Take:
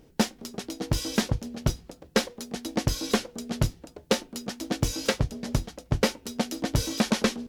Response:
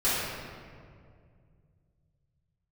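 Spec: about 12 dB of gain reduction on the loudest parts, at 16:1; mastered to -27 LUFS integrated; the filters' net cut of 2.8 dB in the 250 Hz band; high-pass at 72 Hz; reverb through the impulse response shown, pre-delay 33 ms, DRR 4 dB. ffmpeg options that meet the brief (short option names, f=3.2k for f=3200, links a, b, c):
-filter_complex "[0:a]highpass=72,equalizer=f=250:t=o:g=-3.5,acompressor=threshold=-32dB:ratio=16,asplit=2[a][b];[1:a]atrim=start_sample=2205,adelay=33[c];[b][c]afir=irnorm=-1:irlink=0,volume=-17.5dB[d];[a][d]amix=inputs=2:normalize=0,volume=10.5dB"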